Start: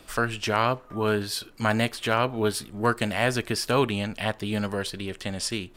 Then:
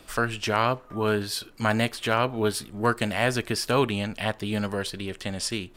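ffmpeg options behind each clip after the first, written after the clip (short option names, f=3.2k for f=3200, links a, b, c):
-af anull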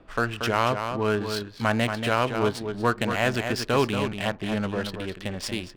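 -af "aecho=1:1:232:0.447,adynamicsmooth=sensitivity=6:basefreq=1.4k"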